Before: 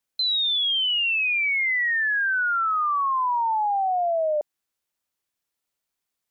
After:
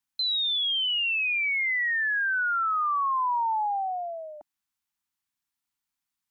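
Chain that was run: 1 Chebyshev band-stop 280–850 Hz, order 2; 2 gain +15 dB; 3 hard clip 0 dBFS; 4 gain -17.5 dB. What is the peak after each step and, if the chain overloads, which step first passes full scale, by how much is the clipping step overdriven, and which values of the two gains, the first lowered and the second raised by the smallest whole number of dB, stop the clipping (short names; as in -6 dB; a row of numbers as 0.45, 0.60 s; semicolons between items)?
-20.0, -5.0, -5.0, -22.5 dBFS; no overload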